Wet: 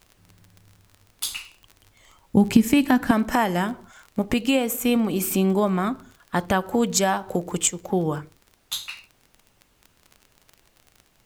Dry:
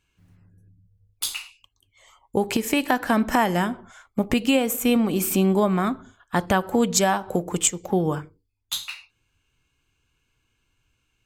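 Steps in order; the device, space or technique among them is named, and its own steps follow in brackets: 1.32–3.11 s: resonant low shelf 310 Hz +9.5 dB, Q 1.5; vinyl LP (crackle 27 per s -32 dBFS; pink noise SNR 38 dB); trim -1 dB

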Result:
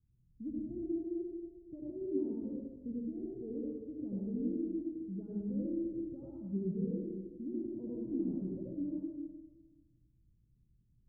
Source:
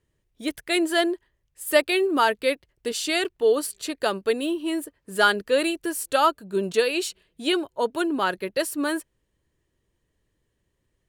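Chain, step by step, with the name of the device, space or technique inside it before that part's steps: club heard from the street (peak limiter -15 dBFS, peak gain reduction 8.5 dB; low-pass 210 Hz 24 dB/octave; reverberation RT60 1.4 s, pre-delay 67 ms, DRR -5 dB)

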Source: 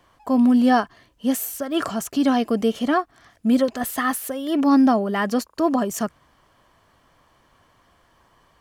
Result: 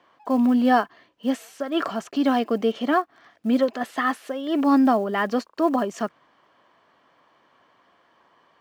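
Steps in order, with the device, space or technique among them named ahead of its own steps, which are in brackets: early digital voice recorder (band-pass 250–3800 Hz; block-companded coder 7-bit)

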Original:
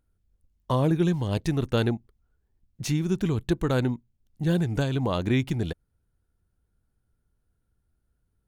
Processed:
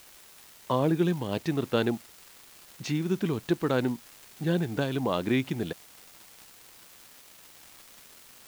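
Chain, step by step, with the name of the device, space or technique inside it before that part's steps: 78 rpm shellac record (band-pass 190–4600 Hz; crackle 340 per s -39 dBFS; white noise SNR 23 dB)

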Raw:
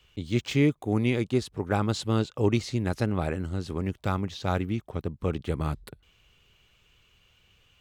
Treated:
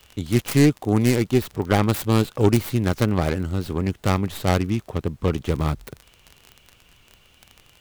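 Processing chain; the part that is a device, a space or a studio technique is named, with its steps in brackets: record under a worn stylus (tracing distortion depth 0.4 ms; crackle 33 per s -35 dBFS; pink noise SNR 39 dB); trim +6 dB

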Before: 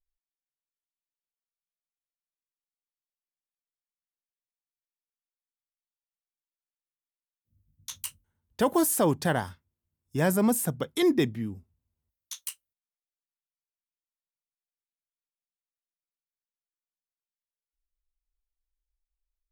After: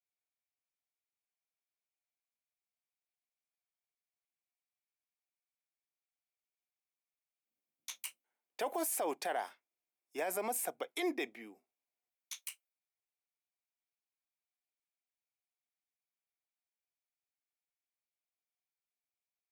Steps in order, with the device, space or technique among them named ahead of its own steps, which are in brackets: laptop speaker (high-pass 360 Hz 24 dB/octave; peaking EQ 720 Hz +10.5 dB 0.34 oct; peaking EQ 2.3 kHz +12 dB 0.36 oct; peak limiter -20.5 dBFS, peak gain reduction 10.5 dB); trim -6.5 dB

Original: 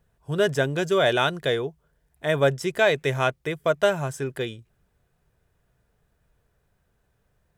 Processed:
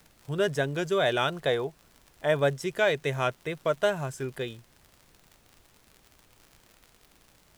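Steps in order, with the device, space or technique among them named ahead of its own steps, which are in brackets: 1.29–2.34 s: peaking EQ 830 Hz +7.5 dB 1.1 oct; vinyl LP (wow and flutter; crackle 71 per s -35 dBFS; pink noise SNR 31 dB); trim -4.5 dB

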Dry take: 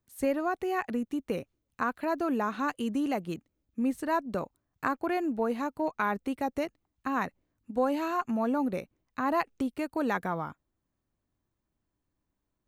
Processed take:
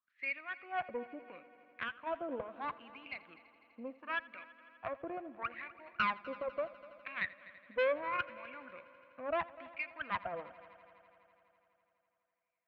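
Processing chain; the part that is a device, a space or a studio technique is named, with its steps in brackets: wah-wah guitar rig (wah-wah 0.74 Hz 500–2300 Hz, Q 8.2; valve stage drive 35 dB, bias 0.7; cabinet simulation 85–3700 Hz, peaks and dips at 420 Hz -10 dB, 840 Hz -9 dB, 2.4 kHz +7 dB); 1.85–3.19 s: peaking EQ 1.9 kHz -13 dB 0.38 oct; multi-head delay 83 ms, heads first and third, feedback 70%, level -20 dB; trim +10 dB

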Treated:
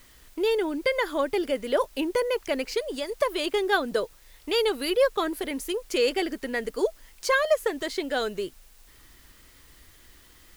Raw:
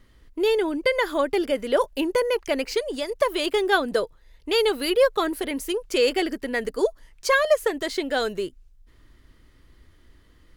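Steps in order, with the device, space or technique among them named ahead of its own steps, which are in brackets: noise-reduction cassette on a plain deck (tape noise reduction on one side only encoder only; wow and flutter 28 cents; white noise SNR 30 dB); trim -3 dB

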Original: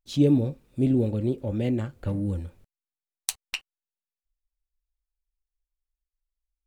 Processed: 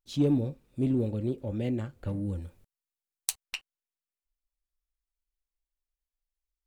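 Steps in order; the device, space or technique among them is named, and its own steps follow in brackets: parallel distortion (in parallel at -8 dB: hard clipper -16.5 dBFS, distortion -16 dB); 2.42–3.44 s: on the sum: treble shelf 5.7 kHz +6 dB; trim -7.5 dB

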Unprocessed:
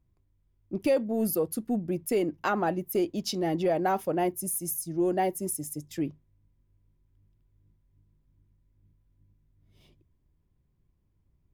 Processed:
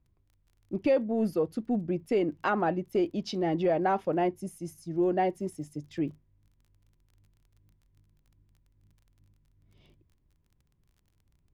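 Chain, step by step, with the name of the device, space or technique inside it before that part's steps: lo-fi chain (low-pass 3.6 kHz 12 dB/octave; wow and flutter 18 cents; crackle 24 per s -52 dBFS)

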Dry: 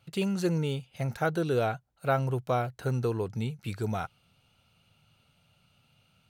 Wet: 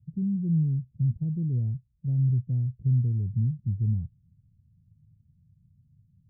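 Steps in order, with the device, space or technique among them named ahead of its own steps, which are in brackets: the neighbour's flat through the wall (low-pass 180 Hz 24 dB/octave; peaking EQ 89 Hz +3.5 dB); trim +7 dB

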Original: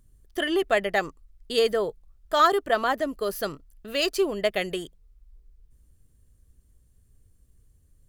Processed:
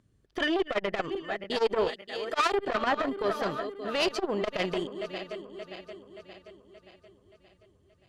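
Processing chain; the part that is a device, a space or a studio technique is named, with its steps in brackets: backward echo that repeats 288 ms, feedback 71%, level -13 dB; valve radio (band-pass 120–4200 Hz; valve stage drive 20 dB, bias 0.4; transformer saturation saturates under 480 Hz); 1.88–2.53 s: tilt EQ +2 dB/octave; trim +3.5 dB

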